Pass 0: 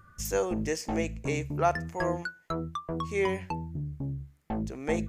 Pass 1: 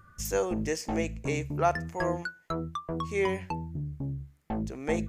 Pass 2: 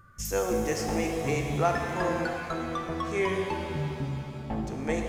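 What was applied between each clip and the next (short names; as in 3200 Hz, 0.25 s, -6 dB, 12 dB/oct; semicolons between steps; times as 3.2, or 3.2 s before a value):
nothing audible
shimmer reverb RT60 3 s, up +7 st, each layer -8 dB, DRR 2 dB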